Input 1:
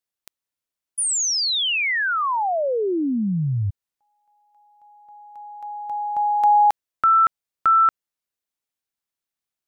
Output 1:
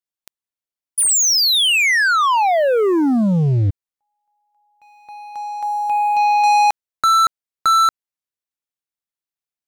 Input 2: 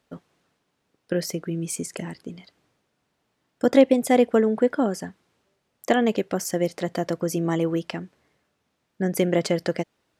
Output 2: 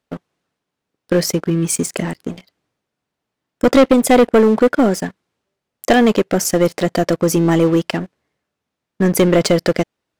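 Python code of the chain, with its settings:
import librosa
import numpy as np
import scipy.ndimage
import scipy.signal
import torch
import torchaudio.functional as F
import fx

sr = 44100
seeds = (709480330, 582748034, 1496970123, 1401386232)

y = fx.leveller(x, sr, passes=3)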